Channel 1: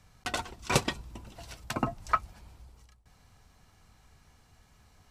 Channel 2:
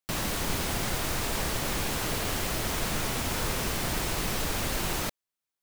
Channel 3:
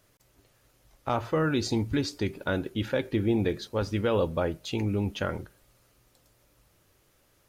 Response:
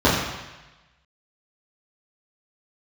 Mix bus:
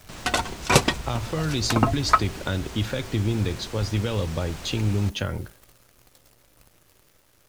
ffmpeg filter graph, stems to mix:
-filter_complex "[0:a]volume=3dB[link_01];[1:a]lowpass=frequency=8600:width=0.5412,lowpass=frequency=8600:width=1.3066,volume=-15.5dB[link_02];[2:a]acrossover=split=150|3000[link_03][link_04][link_05];[link_04]acompressor=threshold=-37dB:ratio=6[link_06];[link_03][link_06][link_05]amix=inputs=3:normalize=0,volume=2dB[link_07];[link_01][link_02][link_07]amix=inputs=3:normalize=0,acontrast=61,acrusher=bits=9:dc=4:mix=0:aa=0.000001"

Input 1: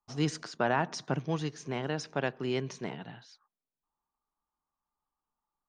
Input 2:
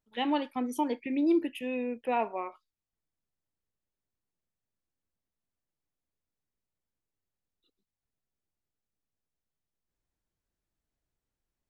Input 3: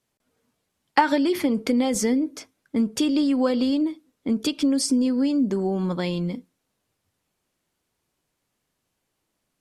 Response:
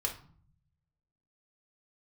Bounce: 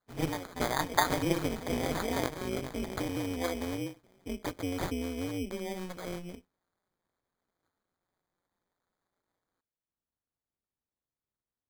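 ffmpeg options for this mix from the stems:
-filter_complex "[0:a]volume=0.5dB,asplit=2[link_01][link_02];[link_02]volume=-9dB[link_03];[1:a]highpass=51,volume=-4.5dB[link_04];[2:a]lowshelf=frequency=350:gain=-11,volume=-3dB[link_05];[link_03]aecho=0:1:407|814|1221|1628|2035|2442:1|0.4|0.16|0.064|0.0256|0.0102[link_06];[link_01][link_04][link_05][link_06]amix=inputs=4:normalize=0,tremolo=f=180:d=0.974,acrusher=samples=16:mix=1:aa=0.000001"

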